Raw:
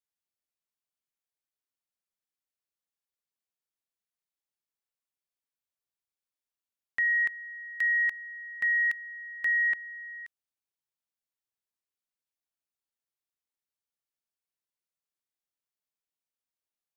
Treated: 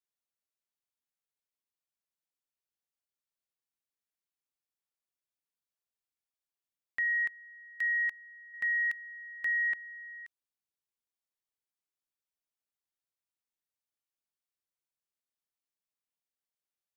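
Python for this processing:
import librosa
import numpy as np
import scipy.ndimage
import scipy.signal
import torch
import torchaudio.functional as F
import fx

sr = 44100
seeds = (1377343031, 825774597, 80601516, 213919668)

y = fx.upward_expand(x, sr, threshold_db=-37.0, expansion=1.5, at=(7.04, 8.54))
y = y * librosa.db_to_amplitude(-4.0)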